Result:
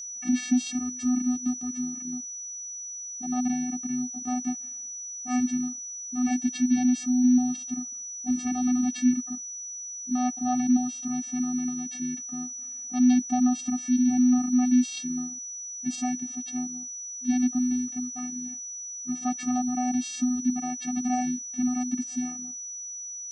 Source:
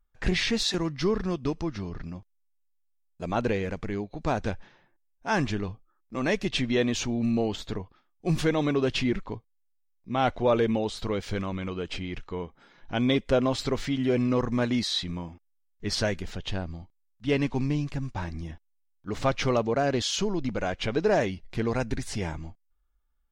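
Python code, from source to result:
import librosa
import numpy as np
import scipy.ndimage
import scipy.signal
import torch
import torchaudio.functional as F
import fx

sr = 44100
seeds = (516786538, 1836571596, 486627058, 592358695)

y = fx.vocoder(x, sr, bands=8, carrier='square', carrier_hz=249.0)
y = fx.bass_treble(y, sr, bass_db=5, treble_db=7)
y = y + 10.0 ** (-35.0 / 20.0) * np.sin(2.0 * np.pi * 5900.0 * np.arange(len(y)) / sr)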